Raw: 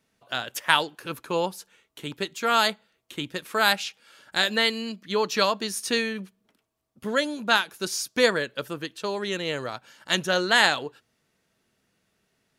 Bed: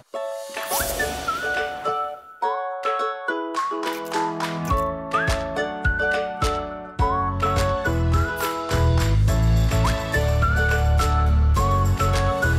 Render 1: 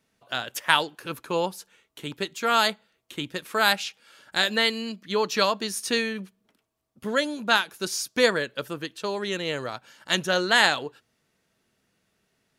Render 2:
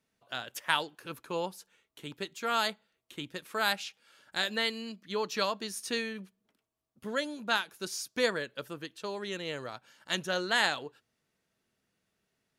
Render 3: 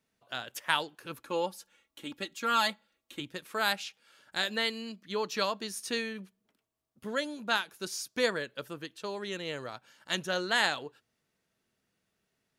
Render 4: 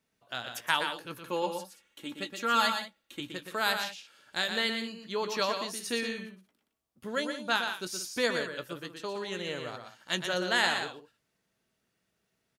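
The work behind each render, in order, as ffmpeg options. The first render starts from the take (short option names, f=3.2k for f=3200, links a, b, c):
-af anull
-af "volume=-8dB"
-filter_complex "[0:a]asettb=1/sr,asplit=3[a][b][c];[a]atrim=end=1.234[d];[b]atrim=start=1.23:end=3.2,asetpts=PTS-STARTPTS,afade=t=in:d=0.004:c=qsin,afade=t=out:st=1.966:d=0.004:c=qsin,aecho=1:1:3.6:0.63,atrim=end_sample=86877[e];[c]atrim=start=3.196[f];[d][e]acrossfade=d=0.004:c1=hsin:c2=qsin[g];[g][f]acrossfade=d=0.004:c1=qsin:c2=hsin"
-filter_complex "[0:a]asplit=2[a][b];[b]adelay=17,volume=-12.5dB[c];[a][c]amix=inputs=2:normalize=0,asplit=2[d][e];[e]aecho=0:1:120|179:0.473|0.2[f];[d][f]amix=inputs=2:normalize=0"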